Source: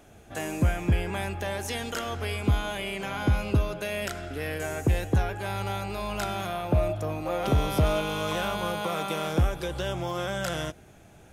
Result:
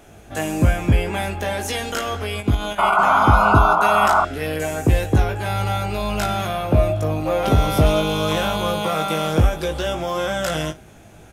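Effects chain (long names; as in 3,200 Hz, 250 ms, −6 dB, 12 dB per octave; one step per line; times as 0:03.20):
0:02.22–0:02.99: output level in coarse steps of 11 dB
ambience of single reflections 19 ms −4.5 dB, 57 ms −17.5 dB
0:02.78–0:04.25: sound drawn into the spectrogram noise 610–1,500 Hz −22 dBFS
level +6 dB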